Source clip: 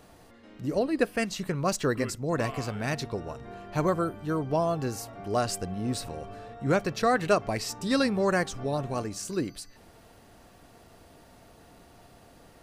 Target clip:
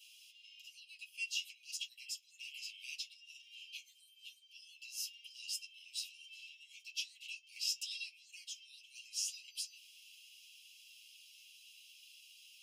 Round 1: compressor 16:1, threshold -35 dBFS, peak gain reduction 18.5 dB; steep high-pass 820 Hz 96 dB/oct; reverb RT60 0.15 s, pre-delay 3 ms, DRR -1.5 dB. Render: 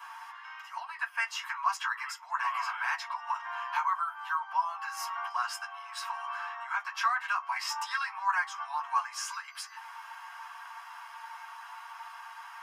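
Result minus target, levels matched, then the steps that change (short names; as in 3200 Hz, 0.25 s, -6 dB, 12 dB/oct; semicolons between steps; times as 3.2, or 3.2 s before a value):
2000 Hz band +6.0 dB
change: steep high-pass 2600 Hz 96 dB/oct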